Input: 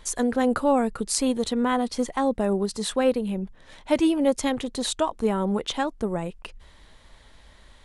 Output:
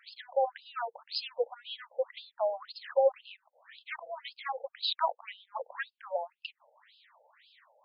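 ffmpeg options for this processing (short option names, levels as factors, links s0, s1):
-af "afreqshift=19,afftfilt=real='re*between(b*sr/1024,610*pow(3700/610,0.5+0.5*sin(2*PI*1.9*pts/sr))/1.41,610*pow(3700/610,0.5+0.5*sin(2*PI*1.9*pts/sr))*1.41)':imag='im*between(b*sr/1024,610*pow(3700/610,0.5+0.5*sin(2*PI*1.9*pts/sr))/1.41,610*pow(3700/610,0.5+0.5*sin(2*PI*1.9*pts/sr))*1.41)':win_size=1024:overlap=0.75"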